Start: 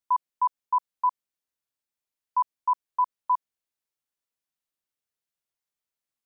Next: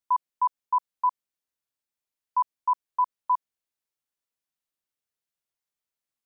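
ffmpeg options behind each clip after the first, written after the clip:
-af anull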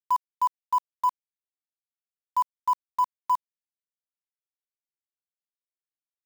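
-af "acrusher=bits=5:mix=0:aa=0.5"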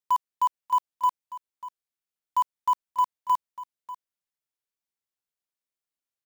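-filter_complex "[0:a]asplit=2[s0][s1];[s1]asoftclip=type=hard:threshold=0.0335,volume=0.266[s2];[s0][s2]amix=inputs=2:normalize=0,aecho=1:1:592:0.168"

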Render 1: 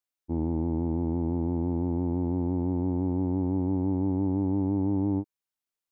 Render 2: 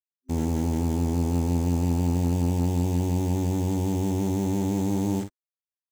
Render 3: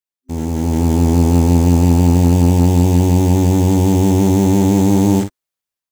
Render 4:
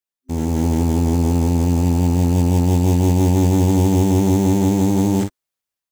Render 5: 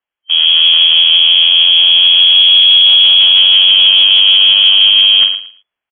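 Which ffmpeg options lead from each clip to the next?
-filter_complex "[0:a]acrusher=bits=8:dc=4:mix=0:aa=0.000001,superequalizer=6b=0.447:15b=2.24,asplit=2[s0][s1];[s1]aecho=0:1:46|56:0.335|0.168[s2];[s0][s2]amix=inputs=2:normalize=0,volume=1.58"
-af "dynaudnorm=f=280:g=5:m=3.55,volume=1.33"
-af "alimiter=limit=0.398:level=0:latency=1"
-af "aecho=1:1:112|224|336:0.282|0.062|0.0136,lowpass=f=2900:t=q:w=0.5098,lowpass=f=2900:t=q:w=0.6013,lowpass=f=2900:t=q:w=0.9,lowpass=f=2900:t=q:w=2.563,afreqshift=-3400,apsyclip=4.73,volume=0.794"

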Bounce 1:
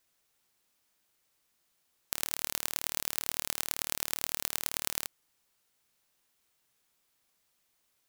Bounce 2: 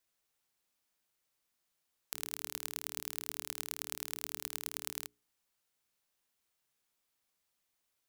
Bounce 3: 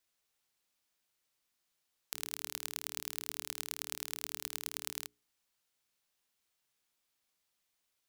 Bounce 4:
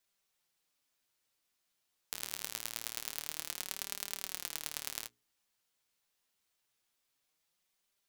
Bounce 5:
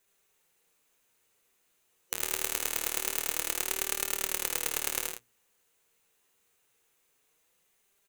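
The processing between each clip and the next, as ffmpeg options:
-af "bandreject=f=60:t=h:w=6,bandreject=f=120:t=h:w=6,bandreject=f=180:t=h:w=6,bandreject=f=240:t=h:w=6,bandreject=f=300:t=h:w=6,bandreject=f=360:t=h:w=6,bandreject=f=420:t=h:w=6,volume=0.447"
-af "equalizer=f=3900:t=o:w=2.1:g=3,volume=0.891"
-af "flanger=delay=5:depth=5.9:regen=48:speed=0.25:shape=sinusoidal,volume=1.68"
-af "superequalizer=7b=2.24:13b=0.631:14b=0.447,aecho=1:1:75.8|107.9:0.562|0.447,volume=2.51"

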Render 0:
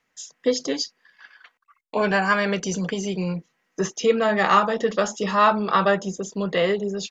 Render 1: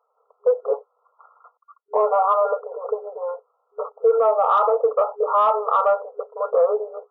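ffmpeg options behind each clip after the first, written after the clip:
-af "afftfilt=real='re*between(b*sr/4096,410,1400)':imag='im*between(b*sr/4096,410,1400)':win_size=4096:overlap=0.75,acontrast=34,alimiter=level_in=3.98:limit=0.891:release=50:level=0:latency=1,volume=0.355"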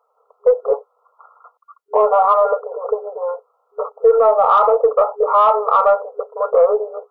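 -af "aeval=exprs='0.335*(cos(1*acos(clip(val(0)/0.335,-1,1)))-cos(1*PI/2))+0.00266*(cos(4*acos(clip(val(0)/0.335,-1,1)))-cos(4*PI/2))':c=same,volume=1.78"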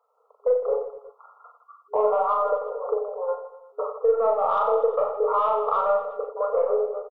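-filter_complex "[0:a]acrossover=split=290[s0][s1];[s1]acompressor=threshold=0.141:ratio=3[s2];[s0][s2]amix=inputs=2:normalize=0,asplit=2[s3][s4];[s4]aecho=0:1:40|92|159.6|247.5|361.7:0.631|0.398|0.251|0.158|0.1[s5];[s3][s5]amix=inputs=2:normalize=0,volume=0.501"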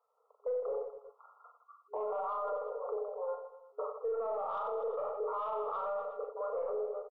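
-af "alimiter=limit=0.0944:level=0:latency=1:release=15,volume=0.376"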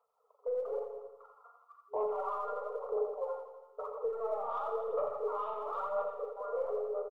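-af "aphaser=in_gain=1:out_gain=1:delay=4.3:decay=0.52:speed=1:type=sinusoidal,aecho=1:1:85|170|255|340|425|510:0.398|0.211|0.112|0.0593|0.0314|0.0166,volume=0.75"

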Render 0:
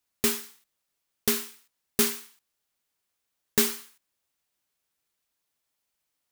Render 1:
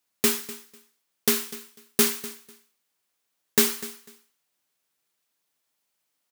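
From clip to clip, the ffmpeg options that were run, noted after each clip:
-af "highpass=130,aecho=1:1:248|496:0.141|0.0268,volume=1.41"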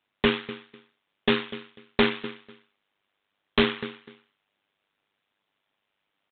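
-af "tremolo=f=100:d=0.71,aresample=8000,aeval=exprs='0.1*(abs(mod(val(0)/0.1+3,4)-2)-1)':c=same,aresample=44100,volume=2.82"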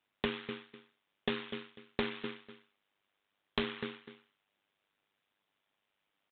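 -af "acompressor=threshold=0.0447:ratio=6,volume=0.631"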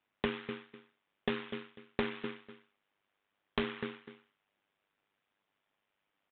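-af "lowpass=2900,volume=1.12"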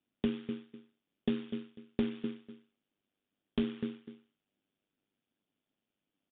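-af "aresample=8000,aresample=44100,equalizer=f=250:t=o:w=1:g=8,equalizer=f=500:t=o:w=1:g=-3,equalizer=f=1000:t=o:w=1:g=-11,equalizer=f=2000:t=o:w=1:g=-10"

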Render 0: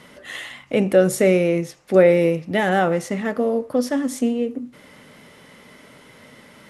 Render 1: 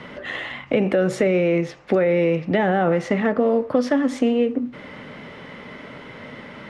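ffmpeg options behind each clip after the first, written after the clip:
-filter_complex "[0:a]lowpass=2900,alimiter=limit=0.237:level=0:latency=1,acrossover=split=350|990[s0][s1][s2];[s0]acompressor=threshold=0.0251:ratio=4[s3];[s1]acompressor=threshold=0.0316:ratio=4[s4];[s2]acompressor=threshold=0.0126:ratio=4[s5];[s3][s4][s5]amix=inputs=3:normalize=0,volume=2.82"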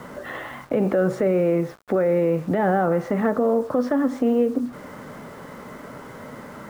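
-af "acrusher=bits=6:mix=0:aa=0.000001,alimiter=limit=0.251:level=0:latency=1:release=74,highshelf=f=1800:t=q:w=1.5:g=-9"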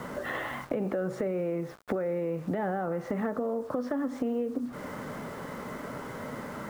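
-af "acompressor=threshold=0.0398:ratio=6"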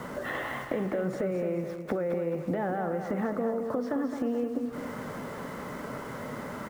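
-af "aecho=1:1:215|430|645|860|1075:0.398|0.183|0.0842|0.0388|0.0178"

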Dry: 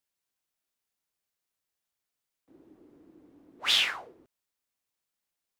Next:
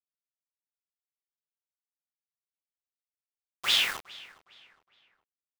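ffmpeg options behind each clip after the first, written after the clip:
-filter_complex "[0:a]acrusher=bits=5:mix=0:aa=0.000001,asplit=2[s0][s1];[s1]adelay=412,lowpass=f=3800:p=1,volume=0.106,asplit=2[s2][s3];[s3]adelay=412,lowpass=f=3800:p=1,volume=0.39,asplit=2[s4][s5];[s5]adelay=412,lowpass=f=3800:p=1,volume=0.39[s6];[s0][s2][s4][s6]amix=inputs=4:normalize=0"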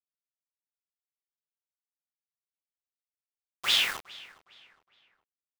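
-af anull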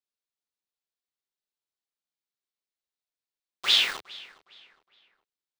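-af "equalizer=f=100:t=o:w=0.67:g=-11,equalizer=f=400:t=o:w=0.67:g=4,equalizer=f=4000:t=o:w=0.67:g=6,equalizer=f=16000:t=o:w=0.67:g=-11"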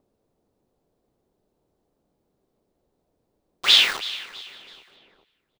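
-filter_complex "[0:a]acrossover=split=660[s0][s1];[s0]acompressor=mode=upward:threshold=0.00178:ratio=2.5[s2];[s1]aecho=1:1:326|652|978:0.15|0.0554|0.0205[s3];[s2][s3]amix=inputs=2:normalize=0,volume=2"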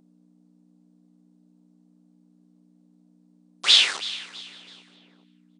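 -af "aeval=exprs='val(0)+0.00794*(sin(2*PI*60*n/s)+sin(2*PI*2*60*n/s)/2+sin(2*PI*3*60*n/s)/3+sin(2*PI*4*60*n/s)/4+sin(2*PI*5*60*n/s)/5)':c=same,afftfilt=real='re*between(b*sr/4096,130,9800)':imag='im*between(b*sr/4096,130,9800)':win_size=4096:overlap=0.75,bass=f=250:g=-7,treble=f=4000:g=7,volume=0.668"

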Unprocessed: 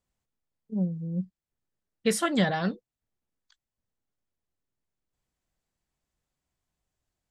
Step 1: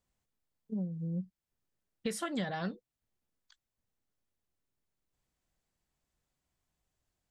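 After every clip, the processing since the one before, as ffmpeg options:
-af "acompressor=threshold=0.02:ratio=4"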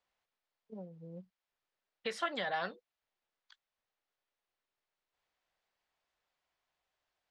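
-filter_complex "[0:a]acrossover=split=480 5000:gain=0.1 1 0.0631[s0][s1][s2];[s0][s1][s2]amix=inputs=3:normalize=0,volume=1.68"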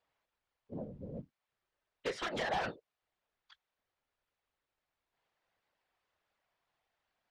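-af "aeval=exprs='0.0237*(abs(mod(val(0)/0.0237+3,4)-2)-1)':c=same,aemphasis=mode=reproduction:type=50fm,afftfilt=real='hypot(re,im)*cos(2*PI*random(0))':imag='hypot(re,im)*sin(2*PI*random(1))':win_size=512:overlap=0.75,volume=2.99"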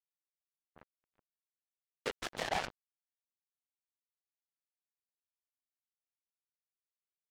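-af "acrusher=bits=4:mix=0:aa=0.5"

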